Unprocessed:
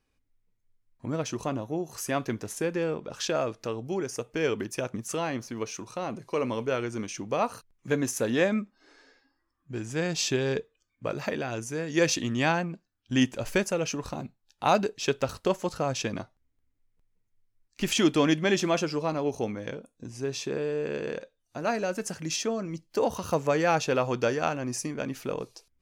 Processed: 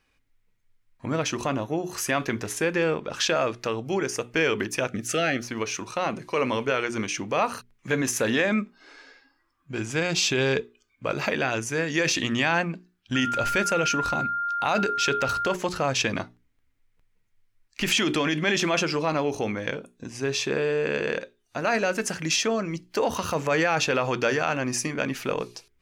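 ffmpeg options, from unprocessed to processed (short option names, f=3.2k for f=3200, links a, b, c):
-filter_complex "[0:a]asettb=1/sr,asplit=3[a][b][c];[a]atrim=end=4.884[d];[b]atrim=start=4.88:end=5.44,asetpts=PTS-STARTPTS,afade=t=in:d=0.004:c=qsin,afade=t=out:st=0.556:d=0.004:c=qsin,asuperstop=centerf=980:order=12:qfactor=2.3[e];[c]atrim=start=5.436[f];[d][e]acrossfade=d=0.004:c1=hsin:c2=qsin[g];[g][f]acrossfade=d=0.004:c1=qsin:c2=hsin,asettb=1/sr,asplit=3[h][i][j];[h]atrim=end=8.524[k];[i]atrim=start=8.52:end=11.33,asetpts=PTS-STARTPTS,afade=t=in:d=0.004:c=qsin,afade=t=out:st=2.806:d=0.004:c=qsin,bandreject=f=1.8k:w=10[l];[j]atrim=start=11.326[m];[k][l]acrossfade=d=0.004:c1=hsin:c2=qsin[n];[n][m]acrossfade=d=0.004:c1=qsin:c2=hsin,asettb=1/sr,asplit=3[o][p][q];[o]atrim=end=13.154[r];[p]atrim=start=13.15:end=15.54,asetpts=PTS-STARTPTS,afade=t=in:d=0.004:c=qsin,afade=t=out:st=2.386:d=0.004:c=qsin,aeval=exprs='val(0)+0.0178*sin(2*PI*1400*n/s)':c=same[s];[q]atrim=start=15.536[t];[r][s]acrossfade=d=0.004:c1=hsin:c2=qsin[u];[u][t]acrossfade=d=0.004:c1=qsin:c2=hsin,bandreject=f=60:t=h:w=6,bandreject=f=120:t=h:w=6,bandreject=f=180:t=h:w=6,bandreject=f=240:t=h:w=6,bandreject=f=300:t=h:w=6,bandreject=f=360:t=h:w=6,bandreject=f=420:t=h:w=6,alimiter=limit=-21.5dB:level=0:latency=1:release=35,equalizer=f=2.1k:t=o:w=2.1:g=8,volume=4dB"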